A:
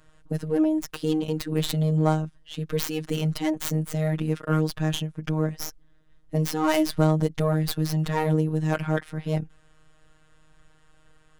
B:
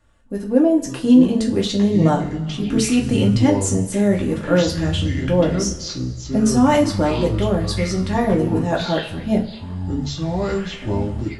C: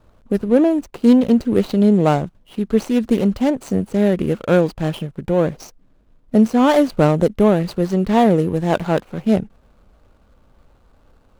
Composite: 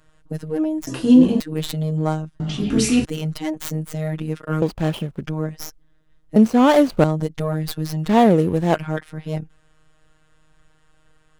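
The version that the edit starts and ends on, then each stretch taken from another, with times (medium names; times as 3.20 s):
A
0.87–1.40 s: from B
2.40–3.05 s: from B
4.62–5.24 s: from C
6.36–7.04 s: from C
8.09–8.75 s: from C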